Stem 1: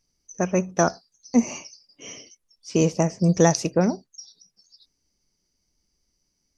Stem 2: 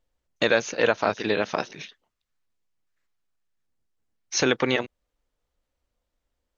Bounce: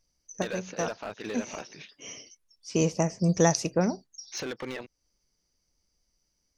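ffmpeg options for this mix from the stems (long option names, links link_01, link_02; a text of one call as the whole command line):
ffmpeg -i stem1.wav -i stem2.wav -filter_complex "[0:a]equalizer=frequency=280:width_type=o:width=2.6:gain=-3,volume=-2.5dB[link_01];[1:a]highshelf=frequency=5400:gain=-6.5,acompressor=threshold=-26dB:ratio=2,asoftclip=type=hard:threshold=-23.5dB,volume=-6dB,asplit=2[link_02][link_03];[link_03]apad=whole_len=289975[link_04];[link_01][link_04]sidechaincompress=threshold=-39dB:ratio=8:attack=6.2:release=390[link_05];[link_05][link_02]amix=inputs=2:normalize=0" out.wav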